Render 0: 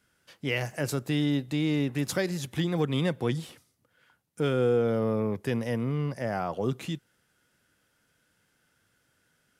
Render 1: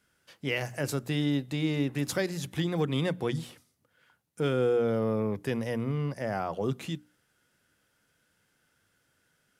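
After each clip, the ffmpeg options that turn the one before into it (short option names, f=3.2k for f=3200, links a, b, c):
-af "bandreject=f=60:t=h:w=6,bandreject=f=120:t=h:w=6,bandreject=f=180:t=h:w=6,bandreject=f=240:t=h:w=6,bandreject=f=300:t=h:w=6,volume=-1dB"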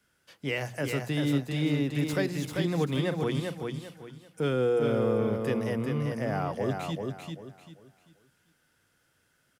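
-filter_complex "[0:a]acrossover=split=200|1600|2700[a][b][c][d];[d]asoftclip=type=tanh:threshold=-39dB[e];[a][b][c][e]amix=inputs=4:normalize=0,aecho=1:1:392|784|1176|1568:0.596|0.173|0.0501|0.0145"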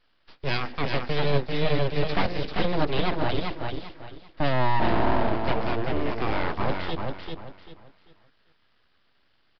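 -af "aeval=exprs='abs(val(0))':c=same,aresample=11025,aresample=44100,volume=6.5dB"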